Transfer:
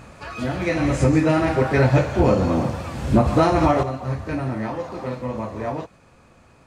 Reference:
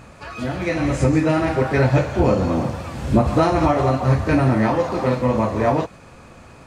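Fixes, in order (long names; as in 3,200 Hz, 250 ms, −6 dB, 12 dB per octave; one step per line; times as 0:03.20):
clipped peaks rebuilt −7 dBFS
level correction +9 dB, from 0:03.83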